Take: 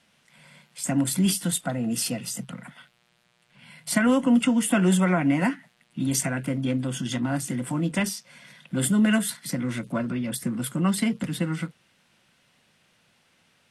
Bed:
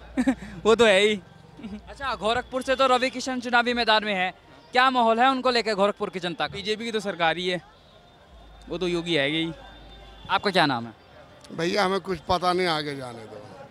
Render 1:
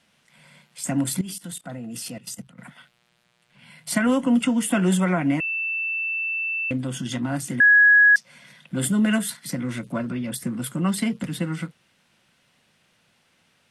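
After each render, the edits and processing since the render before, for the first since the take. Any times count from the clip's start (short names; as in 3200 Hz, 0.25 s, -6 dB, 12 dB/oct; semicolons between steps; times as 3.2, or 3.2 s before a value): 1.21–2.59 level quantiser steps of 17 dB; 5.4–6.71 bleep 2660 Hz -23.5 dBFS; 7.6–8.16 bleep 1670 Hz -10.5 dBFS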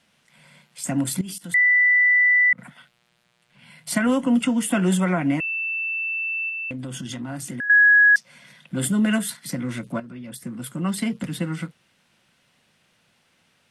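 1.54–2.53 bleep 1980 Hz -13.5 dBFS; 6.49–7.7 compressor, threshold -28 dBFS; 10–11.21 fade in, from -12.5 dB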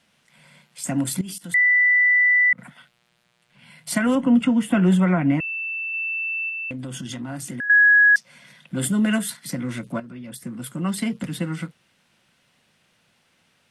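4.15–5.94 tone controls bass +5 dB, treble -11 dB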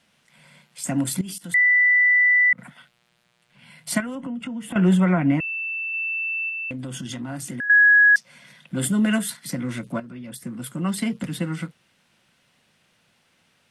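4–4.76 compressor, threshold -29 dBFS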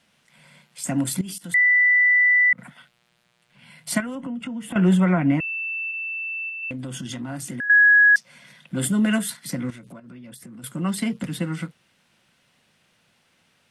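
5.91–6.63 air absorption 210 m; 9.7–10.64 compressor 10:1, threshold -38 dBFS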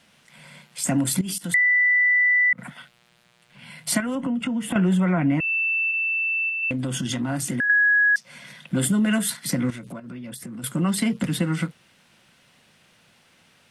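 in parallel at -0.5 dB: limiter -17.5 dBFS, peak gain reduction 9.5 dB; on the sum: compressor 3:1, threshold -19 dBFS, peak gain reduction 7 dB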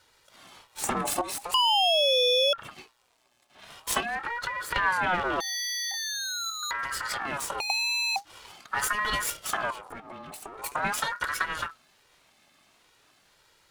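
minimum comb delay 2.1 ms; ring modulator with a swept carrier 1100 Hz, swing 35%, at 0.44 Hz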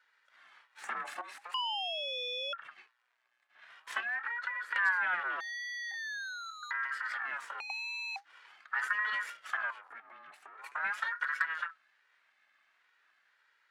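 band-pass 1700 Hz, Q 3; hard clip -20 dBFS, distortion -35 dB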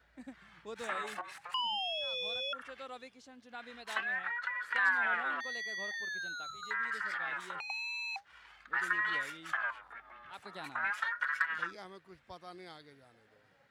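add bed -26.5 dB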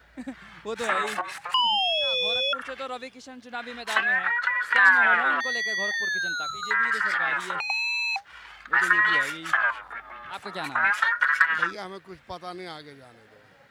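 gain +12 dB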